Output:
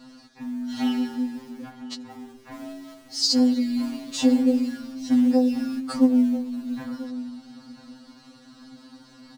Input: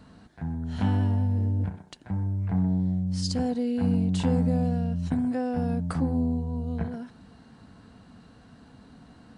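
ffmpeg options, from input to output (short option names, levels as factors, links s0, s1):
-filter_complex "[0:a]equalizer=f=5100:t=o:w=1.2:g=12.5,aecho=1:1:4.1:0.69,asplit=2[s0][s1];[s1]acrusher=bits=3:mode=log:mix=0:aa=0.000001,volume=0.282[s2];[s0][s2]amix=inputs=2:normalize=0,asplit=2[s3][s4];[s4]adelay=991.3,volume=0.2,highshelf=f=4000:g=-22.3[s5];[s3][s5]amix=inputs=2:normalize=0,afftfilt=real='re*2.45*eq(mod(b,6),0)':imag='im*2.45*eq(mod(b,6),0)':win_size=2048:overlap=0.75"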